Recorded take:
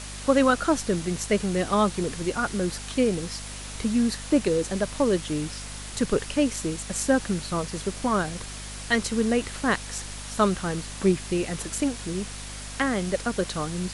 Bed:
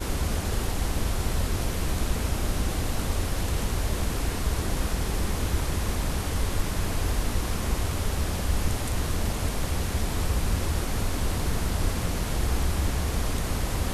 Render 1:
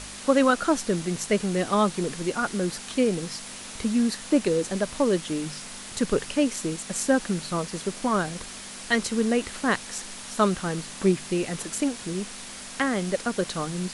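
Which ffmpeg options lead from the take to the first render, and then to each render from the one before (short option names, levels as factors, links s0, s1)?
-af "bandreject=f=50:t=h:w=4,bandreject=f=100:t=h:w=4,bandreject=f=150:t=h:w=4"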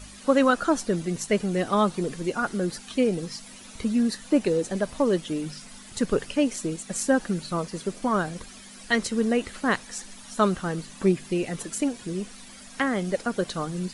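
-af "afftdn=nr=11:nf=-40"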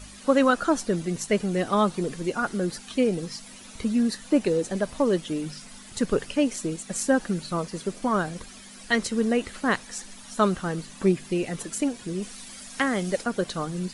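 -filter_complex "[0:a]asettb=1/sr,asplit=3[s0][s1][s2];[s0]atrim=end=12.224[s3];[s1]atrim=start=12.22:end=13.24,asetpts=PTS-STARTPTS,afade=t=in:d=0.004:c=qsin,afade=t=out:st=1.016:d=0.004:c=qsin,highshelf=f=3400:g=6[s4];[s2]atrim=start=13.236[s5];[s3][s4]acrossfade=d=0.004:c1=hsin:c2=qsin[s6];[s6][s5]acrossfade=d=0.004:c1=qsin:c2=hsin"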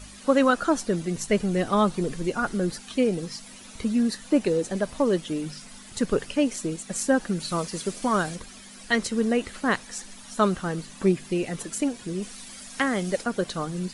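-filter_complex "[0:a]asettb=1/sr,asplit=3[s0][s1][s2];[s0]atrim=end=1.174[s3];[s1]atrim=start=1.17:end=2.75,asetpts=PTS-STARTPTS,afade=t=in:d=0.004:c=qsin,afade=t=out:st=1.576:d=0.004:c=qsin,lowshelf=f=82:g=10[s4];[s2]atrim=start=2.746[s5];[s3][s4]acrossfade=d=0.004:c1=hsin:c2=qsin[s6];[s6][s5]acrossfade=d=0.004:c1=qsin:c2=hsin,asettb=1/sr,asplit=3[s7][s8][s9];[s7]atrim=end=7.404[s10];[s8]atrim=start=7.4:end=8.36,asetpts=PTS-STARTPTS,afade=t=in:d=0.004:c=qsin,afade=t=out:st=0.956:d=0.004:c=qsin,highshelf=f=2500:g=7.5[s11];[s9]atrim=start=8.356[s12];[s10][s11]acrossfade=d=0.004:c1=hsin:c2=qsin[s13];[s13][s12]acrossfade=d=0.004:c1=qsin:c2=hsin"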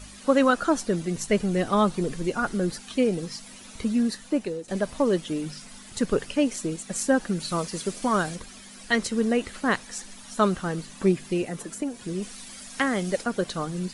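-filter_complex "[0:a]asettb=1/sr,asplit=3[s0][s1][s2];[s0]atrim=end=11.424[s3];[s1]atrim=start=11.42:end=12.01,asetpts=PTS-STARTPTS,afade=t=in:d=0.004:c=qsin,afade=t=out:st=0.586:d=0.004:c=qsin,acrossover=split=120|1900|6300[s4][s5][s6][s7];[s4]acompressor=threshold=0.00178:ratio=3[s8];[s5]acompressor=threshold=0.0447:ratio=3[s9];[s6]acompressor=threshold=0.00282:ratio=3[s10];[s7]acompressor=threshold=0.01:ratio=3[s11];[s8][s9][s10][s11]amix=inputs=4:normalize=0[s12];[s2]atrim=start=12.006[s13];[s3][s12]acrossfade=d=0.004:c1=hsin:c2=qsin[s14];[s14][s13]acrossfade=d=0.004:c1=qsin:c2=hsin,asplit=2[s15][s16];[s15]atrim=end=4.68,asetpts=PTS-STARTPTS,afade=t=out:st=3.79:d=0.89:c=qsin:silence=0.188365[s17];[s16]atrim=start=4.68,asetpts=PTS-STARTPTS,afade=t=in:d=0.004:c=hsin:silence=0.188365[s18];[s17][s18]concat=n=2:v=0:a=1"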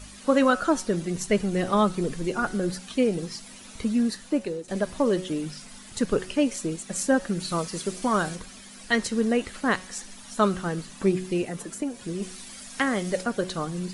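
-af "bandreject=f=184.9:t=h:w=4,bandreject=f=369.8:t=h:w=4,bandreject=f=554.7:t=h:w=4,bandreject=f=739.6:t=h:w=4,bandreject=f=924.5:t=h:w=4,bandreject=f=1109.4:t=h:w=4,bandreject=f=1294.3:t=h:w=4,bandreject=f=1479.2:t=h:w=4,bandreject=f=1664.1:t=h:w=4,bandreject=f=1849:t=h:w=4,bandreject=f=2033.9:t=h:w=4,bandreject=f=2218.8:t=h:w=4,bandreject=f=2403.7:t=h:w=4,bandreject=f=2588.6:t=h:w=4,bandreject=f=2773.5:t=h:w=4,bandreject=f=2958.4:t=h:w=4,bandreject=f=3143.3:t=h:w=4,bandreject=f=3328.2:t=h:w=4,bandreject=f=3513.1:t=h:w=4,bandreject=f=3698:t=h:w=4,bandreject=f=3882.9:t=h:w=4,bandreject=f=4067.8:t=h:w=4,bandreject=f=4252.7:t=h:w=4,bandreject=f=4437.6:t=h:w=4,bandreject=f=4622.5:t=h:w=4,bandreject=f=4807.4:t=h:w=4,bandreject=f=4992.3:t=h:w=4,bandreject=f=5177.2:t=h:w=4,bandreject=f=5362.1:t=h:w=4,bandreject=f=5547:t=h:w=4,bandreject=f=5731.9:t=h:w=4,bandreject=f=5916.8:t=h:w=4,bandreject=f=6101.7:t=h:w=4,bandreject=f=6286.6:t=h:w=4,bandreject=f=6471.5:t=h:w=4,bandreject=f=6656.4:t=h:w=4"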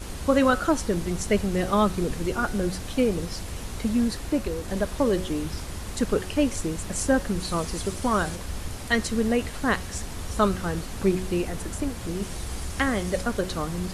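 -filter_complex "[1:a]volume=0.398[s0];[0:a][s0]amix=inputs=2:normalize=0"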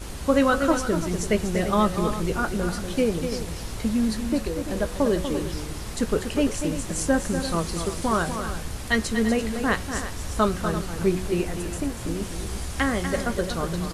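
-filter_complex "[0:a]asplit=2[s0][s1];[s1]adelay=18,volume=0.251[s2];[s0][s2]amix=inputs=2:normalize=0,aecho=1:1:242|340:0.376|0.237"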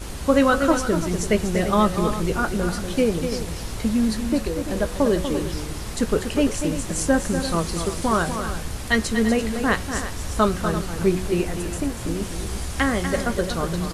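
-af "volume=1.33"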